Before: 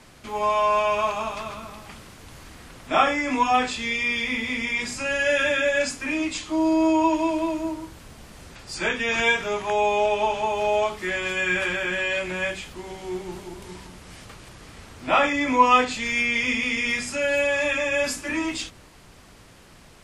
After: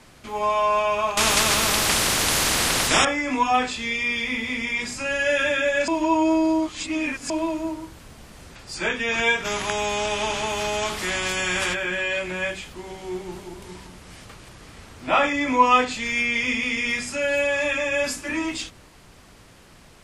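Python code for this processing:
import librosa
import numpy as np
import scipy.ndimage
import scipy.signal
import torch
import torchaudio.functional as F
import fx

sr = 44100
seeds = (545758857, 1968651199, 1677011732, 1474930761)

y = fx.spectral_comp(x, sr, ratio=4.0, at=(1.17, 3.05))
y = fx.spectral_comp(y, sr, ratio=2.0, at=(9.44, 11.73), fade=0.02)
y = fx.edit(y, sr, fx.reverse_span(start_s=5.88, length_s=1.42), tone=tone)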